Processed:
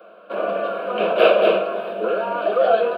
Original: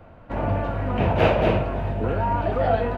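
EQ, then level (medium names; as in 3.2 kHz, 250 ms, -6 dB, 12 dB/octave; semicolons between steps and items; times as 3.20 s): steep high-pass 200 Hz 72 dB/octave; static phaser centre 1.3 kHz, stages 8; +7.5 dB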